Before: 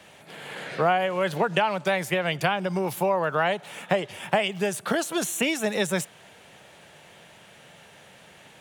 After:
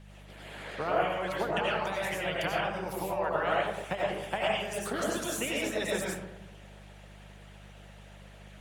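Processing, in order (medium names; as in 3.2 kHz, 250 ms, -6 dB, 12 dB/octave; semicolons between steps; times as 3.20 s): algorithmic reverb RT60 1 s, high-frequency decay 0.45×, pre-delay 50 ms, DRR -6 dB; mains buzz 50 Hz, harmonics 4, -37 dBFS -5 dB/octave; harmonic-percussive split harmonic -11 dB; trim -7.5 dB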